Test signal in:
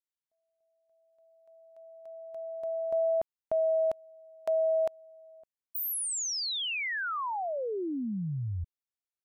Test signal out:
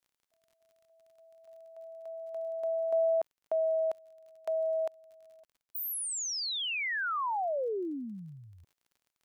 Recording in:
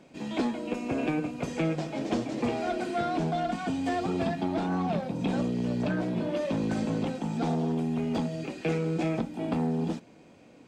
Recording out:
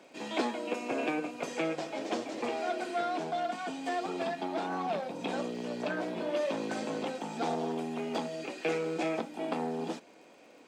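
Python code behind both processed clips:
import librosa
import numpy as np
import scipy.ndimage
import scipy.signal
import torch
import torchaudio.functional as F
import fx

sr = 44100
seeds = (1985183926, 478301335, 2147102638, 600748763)

y = scipy.signal.sosfilt(scipy.signal.butter(2, 410.0, 'highpass', fs=sr, output='sos'), x)
y = fx.rider(y, sr, range_db=5, speed_s=2.0)
y = fx.dmg_crackle(y, sr, seeds[0], per_s=42.0, level_db=-54.0)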